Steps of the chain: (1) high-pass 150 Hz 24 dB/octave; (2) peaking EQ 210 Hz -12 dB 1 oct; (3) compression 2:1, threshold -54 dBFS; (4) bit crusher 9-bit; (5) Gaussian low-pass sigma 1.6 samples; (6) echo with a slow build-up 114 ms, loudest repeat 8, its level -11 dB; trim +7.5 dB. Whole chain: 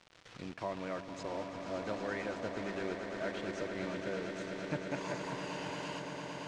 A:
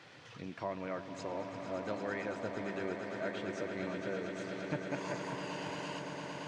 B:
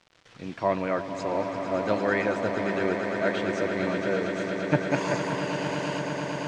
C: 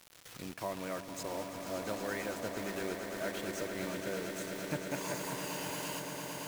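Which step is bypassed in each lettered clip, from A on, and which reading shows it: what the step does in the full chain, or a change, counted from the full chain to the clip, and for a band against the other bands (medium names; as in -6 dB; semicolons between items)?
4, distortion -10 dB; 3, mean gain reduction 8.5 dB; 5, 8 kHz band +11.0 dB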